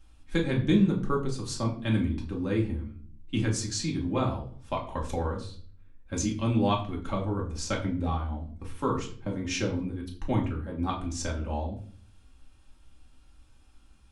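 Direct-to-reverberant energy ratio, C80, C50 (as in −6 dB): −2.5 dB, 13.0 dB, 9.5 dB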